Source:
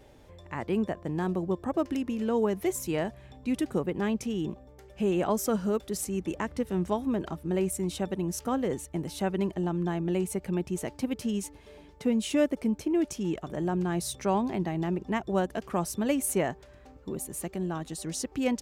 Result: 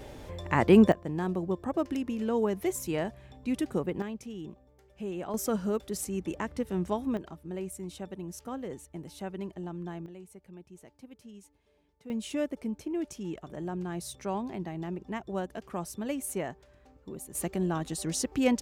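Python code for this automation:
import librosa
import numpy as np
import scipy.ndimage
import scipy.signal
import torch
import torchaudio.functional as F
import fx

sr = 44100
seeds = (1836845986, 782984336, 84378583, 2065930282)

y = fx.gain(x, sr, db=fx.steps((0.0, 10.0), (0.92, -1.5), (4.02, -9.5), (5.34, -2.0), (7.17, -9.0), (10.06, -19.0), (12.1, -6.5), (17.35, 2.5)))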